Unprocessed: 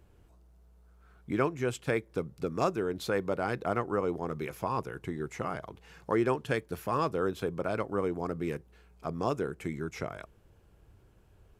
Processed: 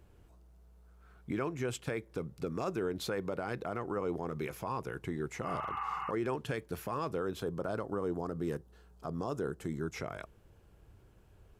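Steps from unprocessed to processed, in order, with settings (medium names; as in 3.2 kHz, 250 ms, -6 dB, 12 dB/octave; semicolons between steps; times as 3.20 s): 5.50–6.08 s: spectral replace 760–3000 Hz before; 7.41–9.94 s: peaking EQ 2.3 kHz -14 dB 0.4 oct; peak limiter -25 dBFS, peak gain reduction 10.5 dB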